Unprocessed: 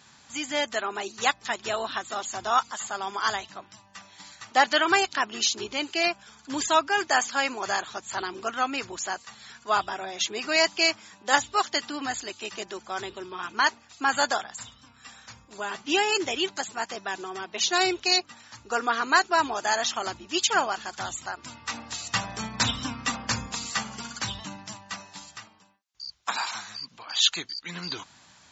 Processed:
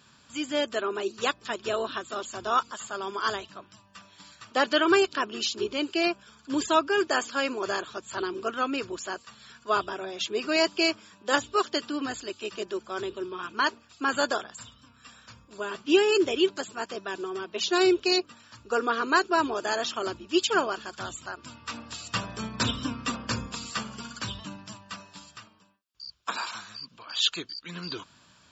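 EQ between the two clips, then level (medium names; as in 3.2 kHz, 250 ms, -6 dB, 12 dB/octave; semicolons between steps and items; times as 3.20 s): dynamic bell 390 Hz, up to +8 dB, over -43 dBFS, Q 1.4; graphic EQ with 31 bands 800 Hz -11 dB, 2 kHz -10 dB, 4 kHz -4 dB, 6.3 kHz -11 dB; 0.0 dB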